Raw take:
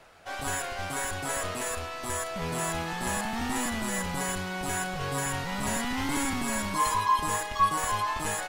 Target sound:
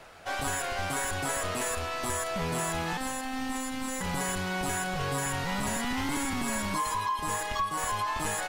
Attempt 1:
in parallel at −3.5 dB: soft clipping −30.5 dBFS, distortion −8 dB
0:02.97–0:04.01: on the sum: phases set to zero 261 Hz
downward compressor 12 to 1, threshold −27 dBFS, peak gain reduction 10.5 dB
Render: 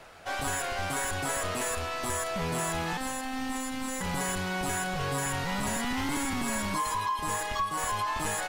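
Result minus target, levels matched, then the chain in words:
soft clipping: distortion +7 dB
in parallel at −3.5 dB: soft clipping −22 dBFS, distortion −16 dB
0:02.97–0:04.01: on the sum: phases set to zero 261 Hz
downward compressor 12 to 1, threshold −27 dBFS, peak gain reduction 12 dB

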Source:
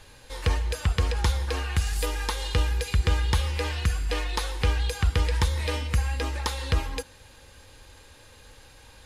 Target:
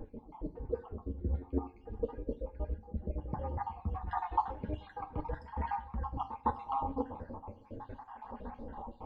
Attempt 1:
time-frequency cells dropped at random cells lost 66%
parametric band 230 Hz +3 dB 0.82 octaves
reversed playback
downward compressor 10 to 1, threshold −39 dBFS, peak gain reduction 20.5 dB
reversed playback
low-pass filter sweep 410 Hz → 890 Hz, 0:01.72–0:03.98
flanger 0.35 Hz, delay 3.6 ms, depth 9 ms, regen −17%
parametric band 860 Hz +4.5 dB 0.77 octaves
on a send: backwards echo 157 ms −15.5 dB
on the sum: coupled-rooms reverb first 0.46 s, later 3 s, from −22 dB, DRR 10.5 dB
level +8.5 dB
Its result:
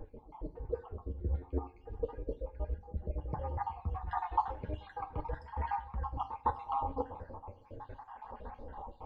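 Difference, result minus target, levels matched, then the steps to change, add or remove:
250 Hz band −5.5 dB
change: first parametric band 230 Hz +13.5 dB 0.82 octaves

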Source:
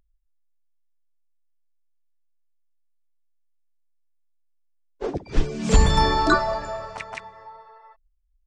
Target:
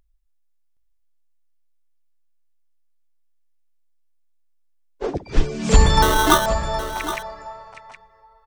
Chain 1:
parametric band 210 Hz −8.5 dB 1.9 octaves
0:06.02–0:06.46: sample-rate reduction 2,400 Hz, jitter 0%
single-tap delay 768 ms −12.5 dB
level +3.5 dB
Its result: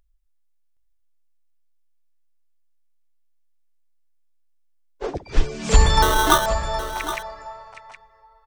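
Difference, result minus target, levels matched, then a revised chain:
250 Hz band −4.0 dB
parametric band 210 Hz −2 dB 1.9 octaves
0:06.02–0:06.46: sample-rate reduction 2,400 Hz, jitter 0%
single-tap delay 768 ms −12.5 dB
level +3.5 dB

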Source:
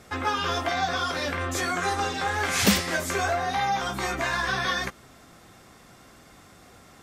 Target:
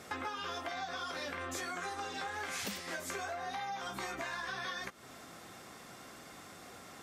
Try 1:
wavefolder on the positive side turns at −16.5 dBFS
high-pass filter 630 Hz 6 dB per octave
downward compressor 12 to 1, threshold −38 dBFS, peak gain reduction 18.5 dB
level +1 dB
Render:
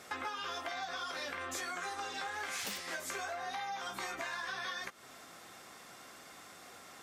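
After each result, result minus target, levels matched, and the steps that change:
wavefolder on the positive side: distortion +14 dB; 250 Hz band −5.0 dB
change: wavefolder on the positive side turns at −9.5 dBFS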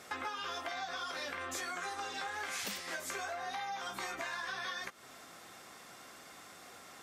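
250 Hz band −5.0 dB
change: high-pass filter 220 Hz 6 dB per octave

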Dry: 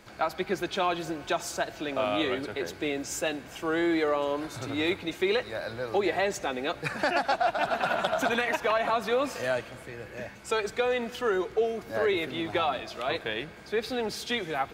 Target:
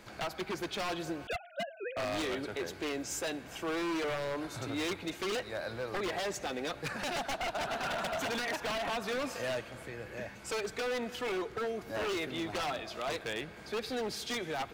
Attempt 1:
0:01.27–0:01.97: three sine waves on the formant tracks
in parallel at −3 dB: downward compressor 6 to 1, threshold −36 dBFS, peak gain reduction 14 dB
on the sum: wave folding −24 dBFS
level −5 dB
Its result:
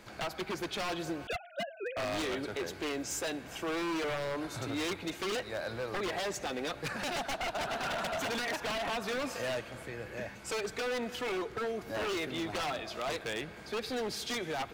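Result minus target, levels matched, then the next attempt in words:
downward compressor: peak gain reduction −5.5 dB
0:01.27–0:01.97: three sine waves on the formant tracks
in parallel at −3 dB: downward compressor 6 to 1, threshold −42.5 dBFS, peak gain reduction 19.5 dB
on the sum: wave folding −24 dBFS
level −5 dB

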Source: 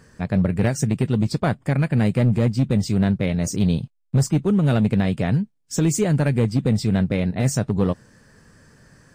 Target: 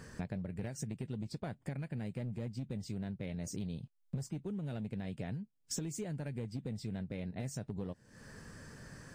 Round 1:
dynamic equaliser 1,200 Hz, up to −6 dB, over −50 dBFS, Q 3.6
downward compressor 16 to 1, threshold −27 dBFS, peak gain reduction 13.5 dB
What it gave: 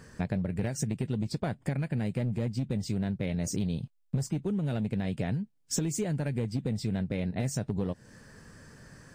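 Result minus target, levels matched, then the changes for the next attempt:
downward compressor: peak gain reduction −9.5 dB
change: downward compressor 16 to 1, threshold −37 dBFS, peak gain reduction 23 dB

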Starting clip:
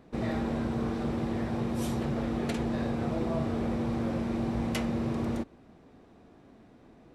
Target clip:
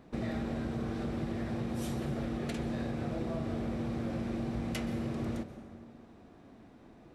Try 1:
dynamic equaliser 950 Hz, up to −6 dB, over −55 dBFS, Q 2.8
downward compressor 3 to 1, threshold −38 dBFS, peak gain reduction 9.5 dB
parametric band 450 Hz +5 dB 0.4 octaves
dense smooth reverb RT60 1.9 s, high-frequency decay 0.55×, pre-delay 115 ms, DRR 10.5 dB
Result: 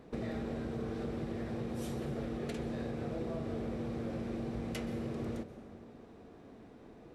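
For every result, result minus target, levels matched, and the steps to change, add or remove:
downward compressor: peak gain reduction +4 dB; 500 Hz band +3.0 dB
change: downward compressor 3 to 1, threshold −32 dBFS, peak gain reduction 5.5 dB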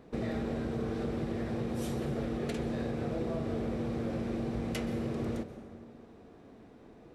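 500 Hz band +3.0 dB
change: parametric band 450 Hz −2.5 dB 0.4 octaves

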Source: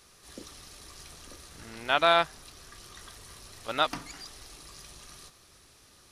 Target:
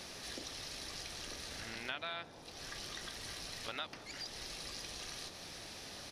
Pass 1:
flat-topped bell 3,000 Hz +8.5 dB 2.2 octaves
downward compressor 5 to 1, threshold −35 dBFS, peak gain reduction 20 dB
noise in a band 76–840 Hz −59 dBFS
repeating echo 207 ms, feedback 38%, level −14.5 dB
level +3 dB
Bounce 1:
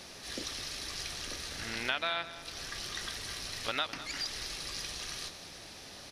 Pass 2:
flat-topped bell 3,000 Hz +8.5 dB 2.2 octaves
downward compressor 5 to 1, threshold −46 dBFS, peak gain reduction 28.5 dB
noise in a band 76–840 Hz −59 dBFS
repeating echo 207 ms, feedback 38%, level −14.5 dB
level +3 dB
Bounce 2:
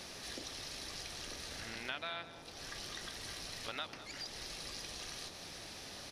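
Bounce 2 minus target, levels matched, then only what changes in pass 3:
echo-to-direct +9.5 dB
change: repeating echo 207 ms, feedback 38%, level −24 dB

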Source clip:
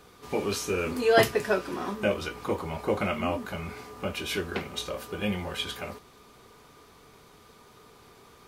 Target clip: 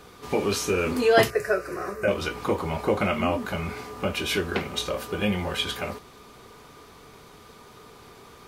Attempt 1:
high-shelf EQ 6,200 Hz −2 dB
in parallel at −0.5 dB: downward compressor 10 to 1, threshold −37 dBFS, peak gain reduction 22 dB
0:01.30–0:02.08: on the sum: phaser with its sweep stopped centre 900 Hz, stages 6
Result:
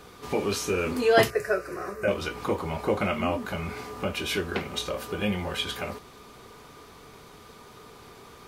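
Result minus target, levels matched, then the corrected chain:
downward compressor: peak gain reduction +8.5 dB
high-shelf EQ 6,200 Hz −2 dB
in parallel at −0.5 dB: downward compressor 10 to 1, threshold −27.5 dBFS, peak gain reduction 13.5 dB
0:01.30–0:02.08: on the sum: phaser with its sweep stopped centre 900 Hz, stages 6

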